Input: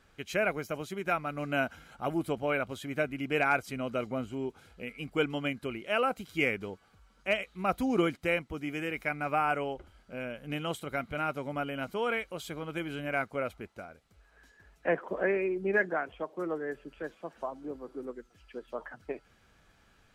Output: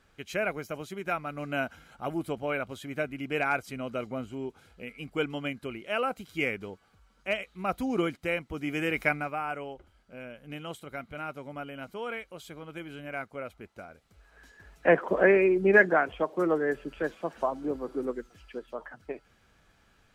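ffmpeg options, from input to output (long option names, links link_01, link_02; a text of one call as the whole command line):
ffmpeg -i in.wav -af "volume=20dB,afade=type=in:start_time=8.38:duration=0.68:silence=0.398107,afade=type=out:start_time=9.06:duration=0.25:silence=0.251189,afade=type=in:start_time=13.51:duration=1.53:silence=0.223872,afade=type=out:start_time=18.19:duration=0.56:silence=0.398107" out.wav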